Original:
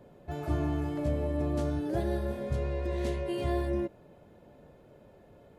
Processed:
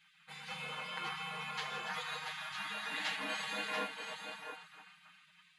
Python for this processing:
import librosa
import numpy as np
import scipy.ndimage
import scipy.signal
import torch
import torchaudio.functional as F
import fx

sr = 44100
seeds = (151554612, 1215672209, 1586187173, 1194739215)

p1 = scipy.signal.sosfilt(scipy.signal.ellip(4, 1.0, 50, 260.0, 'highpass', fs=sr, output='sos'), x)
p2 = fx.high_shelf(p1, sr, hz=3500.0, db=-7.0)
p3 = p2 + fx.echo_single(p2, sr, ms=685, db=-6.5, dry=0)
p4 = np.repeat(scipy.signal.resample_poly(p3, 1, 4), 4)[:len(p3)]
p5 = scipy.signal.sosfilt(scipy.signal.butter(4, 5700.0, 'lowpass', fs=sr, output='sos'), p4)
p6 = fx.echo_feedback(p5, sr, ms=289, feedback_pct=46, wet_db=-10.5)
p7 = fx.spec_gate(p6, sr, threshold_db=-30, keep='weak')
p8 = p7 + 0.83 * np.pad(p7, (int(6.5 * sr / 1000.0), 0))[:len(p7)]
y = p8 * 10.0 ** (14.0 / 20.0)